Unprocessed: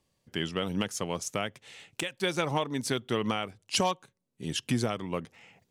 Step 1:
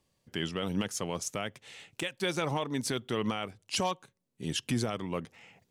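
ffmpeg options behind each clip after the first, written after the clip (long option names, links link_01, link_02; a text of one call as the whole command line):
ffmpeg -i in.wav -af "alimiter=limit=-20.5dB:level=0:latency=1:release=20" out.wav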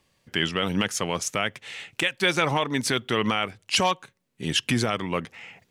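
ffmpeg -i in.wav -af "equalizer=frequency=2000:width=0.69:gain=7.5,volume=5.5dB" out.wav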